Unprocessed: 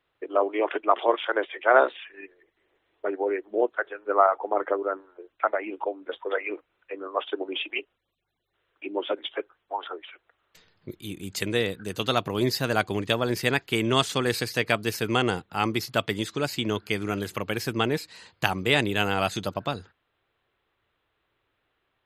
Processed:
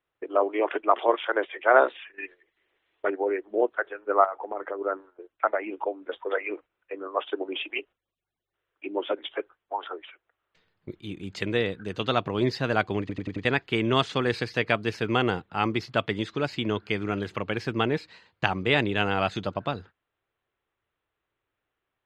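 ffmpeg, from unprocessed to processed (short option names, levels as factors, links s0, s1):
-filter_complex "[0:a]asettb=1/sr,asplit=3[s0][s1][s2];[s0]atrim=end=2.184[s3];[s1]atrim=start=2.18:end=3.1,asetpts=PTS-STARTPTS,afade=t=in:d=0.004:c=qsin,afade=t=out:st=0.916:d=0.004:c=qsin,equalizer=f=3400:w=0.44:g=11[s4];[s2]atrim=start=3.096[s5];[s3][s4]acrossfade=d=0.004:c1=hsin:c2=qsin[s6];[s6][s5]acrossfade=d=0.004:c1=qsin:c2=hsin,asettb=1/sr,asplit=3[s7][s8][s9];[s7]atrim=end=4.244[s10];[s8]atrim=start=4.24:end=4.81,asetpts=PTS-STARTPTS,afade=t=in:d=0.004:c=qsin,afade=t=out:st=0.566:d=0.004:c=qsin,acompressor=threshold=0.0282:ratio=2.5:attack=3.2:release=140:knee=1:detection=peak[s11];[s9]atrim=start=4.806[s12];[s10][s11]acrossfade=d=0.004:c1=hsin:c2=qsin[s13];[s13][s12]acrossfade=d=0.004:c1=qsin:c2=hsin,asplit=6[s14][s15][s16][s17][s18][s19];[s14]atrim=end=13.092[s20];[s15]atrim=start=12.998:end=13.092[s21];[s16]atrim=start=12.998:end=13.092[s22];[s17]atrim=start=12.998:end=13.092[s23];[s18]atrim=start=12.998:end=13.092[s24];[s19]atrim=start=13.448[s25];[s20][s21]acrossfade=d=0.004:c1=hsin:c2=hsin[s26];[s26][s22]acrossfade=d=0.004:c1=hsin:c2=hsin[s27];[s27][s23]acrossfade=d=0.004:c1=hsin:c2=hsin[s28];[s28][s24]acrossfade=d=0.004:c1=hsin:c2=hsin[s29];[s29][s25]acrossfade=d=0.004:c1=hsin:c2=hsin,agate=range=0.398:threshold=0.00562:ratio=16:detection=peak,lowpass=3400"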